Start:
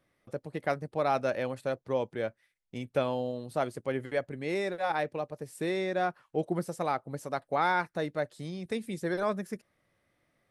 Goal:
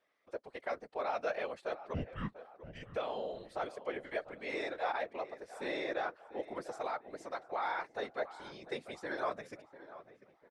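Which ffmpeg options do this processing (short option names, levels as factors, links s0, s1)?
-filter_complex "[0:a]alimiter=limit=0.0794:level=0:latency=1:release=37,highpass=510,lowpass=5400,asettb=1/sr,asplit=3[s0][s1][s2];[s0]atrim=end=1.944[s3];[s1]atrim=start=1.94:end=2.83,asetpts=PTS-STARTPTS,afade=t=in:d=0.004:c=qsin,afade=t=out:st=0.886:d=0.004:c=qsin,afreqshift=-400[s4];[s2]atrim=start=2.826[s5];[s3][s4]acrossfade=d=0.004:c1=hsin:c2=qsin[s6];[s6][s5]acrossfade=d=0.004:c1=qsin:c2=hsin,asplit=2[s7][s8];[s8]adelay=695,lowpass=f=2000:p=1,volume=0.188,asplit=2[s9][s10];[s10]adelay=695,lowpass=f=2000:p=1,volume=0.47,asplit=2[s11][s12];[s12]adelay=695,lowpass=f=2000:p=1,volume=0.47,asplit=2[s13][s14];[s14]adelay=695,lowpass=f=2000:p=1,volume=0.47[s15];[s7][s9][s11][s13][s15]amix=inputs=5:normalize=0,afftfilt=real='hypot(re,im)*cos(2*PI*random(0))':imag='hypot(re,im)*sin(2*PI*random(1))':win_size=512:overlap=0.75,volume=1.5"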